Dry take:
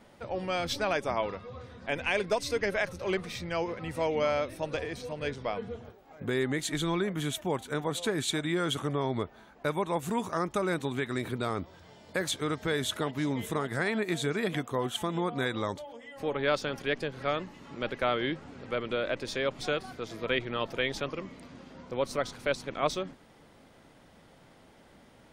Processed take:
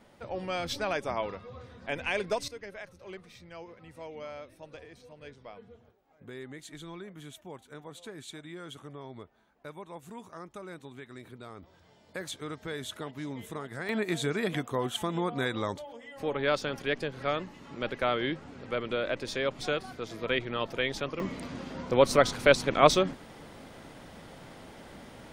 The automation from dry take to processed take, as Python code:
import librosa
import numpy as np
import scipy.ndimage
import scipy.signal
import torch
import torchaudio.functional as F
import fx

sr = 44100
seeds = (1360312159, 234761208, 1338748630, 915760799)

y = fx.gain(x, sr, db=fx.steps((0.0, -2.0), (2.48, -14.0), (11.63, -7.5), (13.89, 0.0), (21.2, 9.0)))